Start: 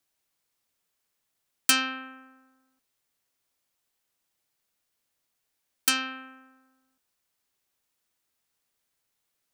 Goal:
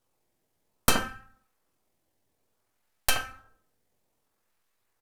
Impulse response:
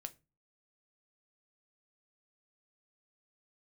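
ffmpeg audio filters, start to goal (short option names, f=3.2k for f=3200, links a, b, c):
-filter_complex "[0:a]highpass=850,highshelf=f=3.5k:g=7,asplit=2[a][b];[b]acrusher=samples=19:mix=1:aa=0.000001:lfo=1:lforange=30.4:lforate=0.31,volume=-6dB[c];[a][c]amix=inputs=2:normalize=0,flanger=delay=8.3:depth=6.5:regen=-14:speed=1.2:shape=sinusoidal,atempo=1.9,acrossover=split=2100[d][e];[d]aecho=1:1:74:0.562[f];[e]aeval=exprs='max(val(0),0)':c=same[g];[f][g]amix=inputs=2:normalize=0[h];[1:a]atrim=start_sample=2205,asetrate=29547,aresample=44100[i];[h][i]afir=irnorm=-1:irlink=0,volume=3.5dB"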